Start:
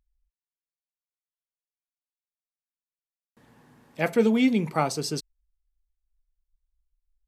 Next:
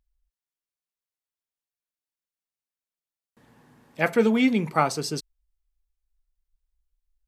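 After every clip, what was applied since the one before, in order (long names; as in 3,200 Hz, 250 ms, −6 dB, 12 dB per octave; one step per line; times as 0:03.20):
dynamic equaliser 1,400 Hz, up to +6 dB, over −38 dBFS, Q 0.92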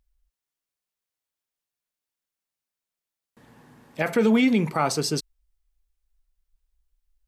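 brickwall limiter −15.5 dBFS, peak gain reduction 9.5 dB
level +4 dB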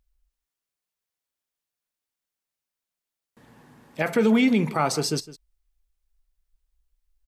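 single-tap delay 159 ms −17.5 dB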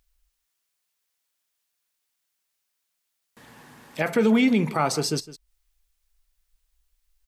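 one half of a high-frequency compander encoder only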